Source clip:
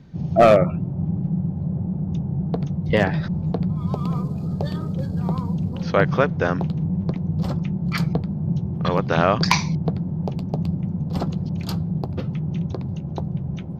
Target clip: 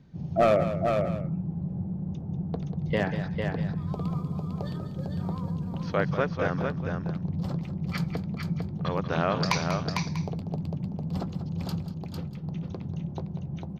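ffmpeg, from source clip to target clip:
ffmpeg -i in.wav -filter_complex "[0:a]asplit=2[link_01][link_02];[link_02]aecho=0:1:191:0.282[link_03];[link_01][link_03]amix=inputs=2:normalize=0,asettb=1/sr,asplit=3[link_04][link_05][link_06];[link_04]atrim=end=11.814[link_07];[link_05]atrim=start=11.81:end=12.44,asetpts=PTS-STARTPTS,afade=type=in:duration=0.004:curve=qsin,afade=type=out:start_time=0.626:duration=0.004:curve=qsin,acompressor=threshold=-25dB:ratio=6[link_08];[link_06]atrim=start=12.436[link_09];[link_07][link_08]acrossfade=duration=0.004:curve1=hsin:curve2=qsin[link_10];[link_10][link_09]acrossfade=duration=0.004:curve1=qsin:curve2=hsin,asplit=2[link_11][link_12];[link_12]aecho=0:1:451:0.562[link_13];[link_11][link_13]amix=inputs=2:normalize=0,volume=-8.5dB" out.wav

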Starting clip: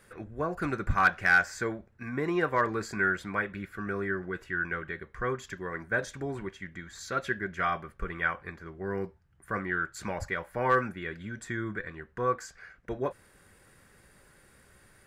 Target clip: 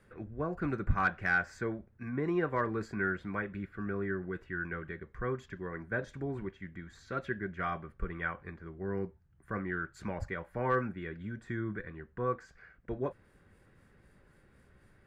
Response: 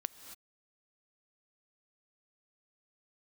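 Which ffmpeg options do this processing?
-filter_complex "[0:a]highshelf=frequency=4800:gain=-10,acrossover=split=390|4200[link_01][link_02][link_03];[link_01]acontrast=49[link_04];[link_03]tremolo=f=3.9:d=0.72[link_05];[link_04][link_02][link_05]amix=inputs=3:normalize=0,volume=-6dB"

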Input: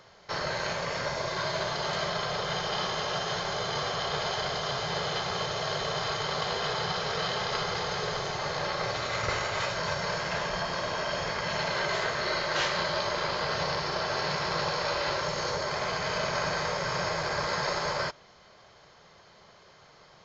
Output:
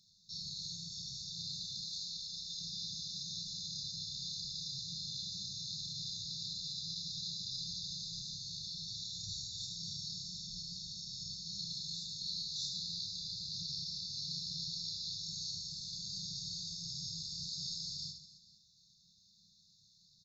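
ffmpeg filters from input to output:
ffmpeg -i in.wav -filter_complex "[0:a]asettb=1/sr,asplit=3[link_01][link_02][link_03];[link_01]atrim=end=1.864[link_04];[link_02]atrim=start=1.86:end=2.6,asetpts=PTS-STARTPTS,afade=type=in:duration=0.004:curve=qsin,afade=type=out:start_time=0.736:duration=0.004:curve=qsin,equalizer=frequency=140:width_type=o:width=1.2:gain=-12.5[link_05];[link_03]atrim=start=2.596[link_06];[link_04][link_05]acrossfade=duration=0.004:curve1=hsin:curve2=qsin[link_07];[link_07][link_06]acrossfade=duration=0.004:curve1=qsin:curve2=hsin,afftfilt=real='re*(1-between(b*sr/4096,220,3500))':imag='im*(1-between(b*sr/4096,220,3500))':win_size=4096:overlap=0.75,lowshelf=frequency=300:gain=-10.5,bandreject=frequency=60:width_type=h:width=6,bandreject=frequency=120:width_type=h:width=6,aecho=1:1:30|78|154.8|277.7|474.3:0.631|0.398|0.251|0.158|0.1,volume=-5.5dB" out.wav

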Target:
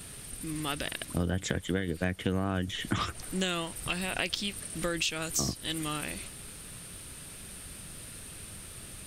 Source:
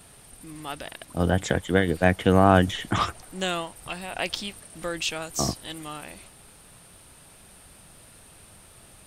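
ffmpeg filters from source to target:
ffmpeg -i in.wav -af "equalizer=frequency=800:width=1.2:gain=-9.5,acompressor=threshold=-34dB:ratio=6,volume=6.5dB" out.wav

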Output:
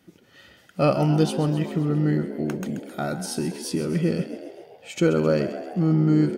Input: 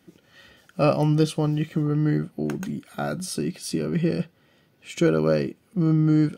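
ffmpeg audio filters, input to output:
ffmpeg -i in.wav -filter_complex "[0:a]asplit=8[link_01][link_02][link_03][link_04][link_05][link_06][link_07][link_08];[link_02]adelay=132,afreqshift=59,volume=-12dB[link_09];[link_03]adelay=264,afreqshift=118,volume=-16.2dB[link_10];[link_04]adelay=396,afreqshift=177,volume=-20.3dB[link_11];[link_05]adelay=528,afreqshift=236,volume=-24.5dB[link_12];[link_06]adelay=660,afreqshift=295,volume=-28.6dB[link_13];[link_07]adelay=792,afreqshift=354,volume=-32.8dB[link_14];[link_08]adelay=924,afreqshift=413,volume=-36.9dB[link_15];[link_01][link_09][link_10][link_11][link_12][link_13][link_14][link_15]amix=inputs=8:normalize=0" out.wav

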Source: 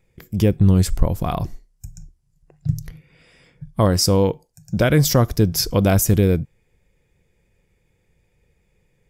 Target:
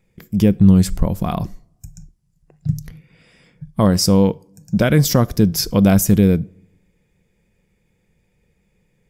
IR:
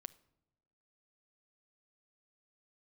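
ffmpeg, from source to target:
-filter_complex "[0:a]equalizer=frequency=200:width_type=o:width=0.6:gain=9,asplit=2[link_01][link_02];[1:a]atrim=start_sample=2205,lowshelf=frequency=230:gain=-8[link_03];[link_02][link_03]afir=irnorm=-1:irlink=0,volume=1.5dB[link_04];[link_01][link_04]amix=inputs=2:normalize=0,volume=-4dB"

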